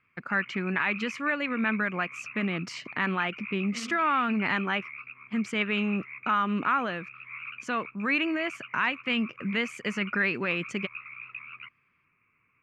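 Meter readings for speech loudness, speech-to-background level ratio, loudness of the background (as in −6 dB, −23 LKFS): −29.0 LKFS, 12.5 dB, −41.5 LKFS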